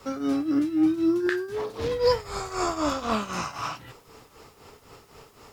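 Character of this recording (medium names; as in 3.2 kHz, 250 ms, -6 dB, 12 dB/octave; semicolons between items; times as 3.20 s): tremolo triangle 3.9 Hz, depth 80%; a quantiser's noise floor 12-bit, dither triangular; Opus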